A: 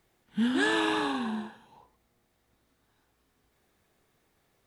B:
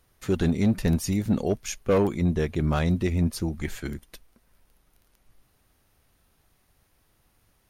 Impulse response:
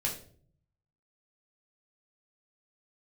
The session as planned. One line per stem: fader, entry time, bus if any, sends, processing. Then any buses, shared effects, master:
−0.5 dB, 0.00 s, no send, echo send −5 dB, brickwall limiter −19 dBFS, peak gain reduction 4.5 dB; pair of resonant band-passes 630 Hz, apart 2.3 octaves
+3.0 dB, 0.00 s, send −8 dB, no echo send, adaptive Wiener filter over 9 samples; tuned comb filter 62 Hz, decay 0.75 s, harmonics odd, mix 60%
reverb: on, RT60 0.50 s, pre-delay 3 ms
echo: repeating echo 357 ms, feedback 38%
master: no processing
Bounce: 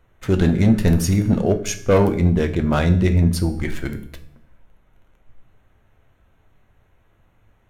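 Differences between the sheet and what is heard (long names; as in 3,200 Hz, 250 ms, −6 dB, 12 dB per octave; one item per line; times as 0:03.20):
stem A −0.5 dB → −9.5 dB
stem B +3.0 dB → +11.0 dB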